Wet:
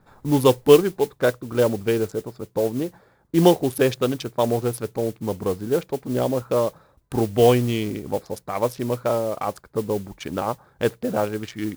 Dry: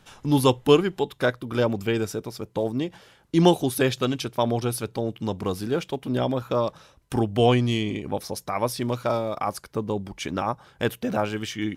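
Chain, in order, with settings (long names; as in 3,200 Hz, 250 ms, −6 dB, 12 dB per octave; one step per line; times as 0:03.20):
adaptive Wiener filter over 15 samples
dynamic equaliser 480 Hz, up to +6 dB, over −35 dBFS, Q 2
noise that follows the level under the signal 20 dB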